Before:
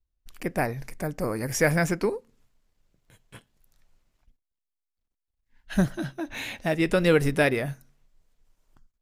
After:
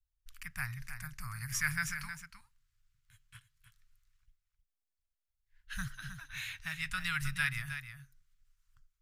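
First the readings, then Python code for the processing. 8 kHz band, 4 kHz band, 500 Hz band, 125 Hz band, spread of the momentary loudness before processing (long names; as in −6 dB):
−5.5 dB, −5.5 dB, below −40 dB, −12.5 dB, 13 LU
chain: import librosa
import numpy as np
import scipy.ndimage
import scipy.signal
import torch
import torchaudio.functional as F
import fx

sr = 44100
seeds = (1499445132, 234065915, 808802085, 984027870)

y = scipy.signal.sosfilt(scipy.signal.cheby1(3, 1.0, [120.0, 1300.0], 'bandstop', fs=sr, output='sos'), x)
y = fx.peak_eq(y, sr, hz=310.0, db=14.5, octaves=0.47)
y = y + 10.0 ** (-9.5 / 20.0) * np.pad(y, (int(313 * sr / 1000.0), 0))[:len(y)]
y = F.gain(torch.from_numpy(y), -5.5).numpy()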